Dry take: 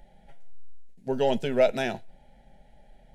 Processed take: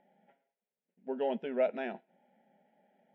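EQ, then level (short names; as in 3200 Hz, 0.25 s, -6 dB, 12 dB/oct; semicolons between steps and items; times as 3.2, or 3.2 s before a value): polynomial smoothing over 25 samples; brick-wall FIR high-pass 170 Hz; air absorption 200 m; -7.5 dB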